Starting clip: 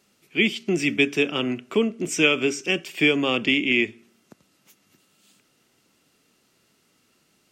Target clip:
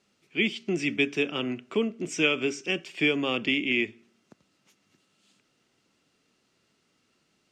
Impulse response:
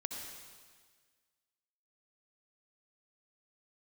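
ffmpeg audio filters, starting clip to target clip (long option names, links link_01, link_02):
-af "lowpass=6900,volume=-5dB"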